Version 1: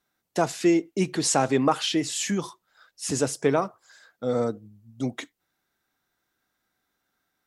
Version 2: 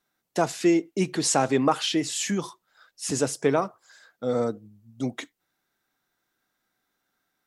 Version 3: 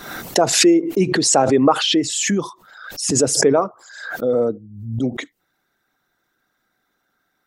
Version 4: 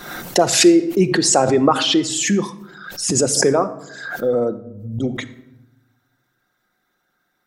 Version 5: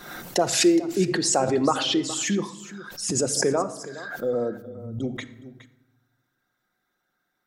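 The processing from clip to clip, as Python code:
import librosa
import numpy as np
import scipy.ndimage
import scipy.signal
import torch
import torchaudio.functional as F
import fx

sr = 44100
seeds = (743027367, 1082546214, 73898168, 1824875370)

y1 = fx.peak_eq(x, sr, hz=66.0, db=-8.5, octaves=0.81)
y2 = fx.envelope_sharpen(y1, sr, power=1.5)
y2 = fx.pre_swell(y2, sr, db_per_s=67.0)
y2 = y2 * librosa.db_to_amplitude(7.0)
y3 = fx.room_shoebox(y2, sr, seeds[0], volume_m3=3100.0, walls='furnished', distance_m=0.93)
y4 = y3 + 10.0 ** (-16.0 / 20.0) * np.pad(y3, (int(417 * sr / 1000.0), 0))[:len(y3)]
y4 = y4 * librosa.db_to_amplitude(-7.0)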